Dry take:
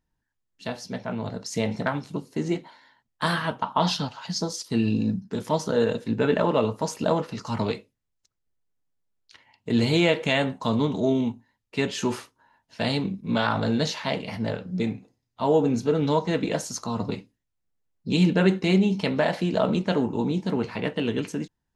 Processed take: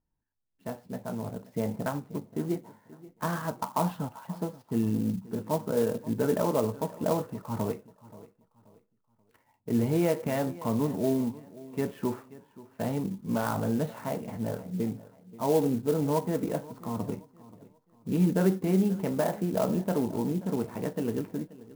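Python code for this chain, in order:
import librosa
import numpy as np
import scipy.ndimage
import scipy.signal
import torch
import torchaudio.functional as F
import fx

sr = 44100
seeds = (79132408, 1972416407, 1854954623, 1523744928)

p1 = scipy.signal.sosfilt(scipy.signal.butter(2, 1200.0, 'lowpass', fs=sr, output='sos'), x)
p2 = p1 + fx.echo_feedback(p1, sr, ms=531, feedback_pct=33, wet_db=-19.0, dry=0)
p3 = fx.clock_jitter(p2, sr, seeds[0], jitter_ms=0.039)
y = F.gain(torch.from_numpy(p3), -4.0).numpy()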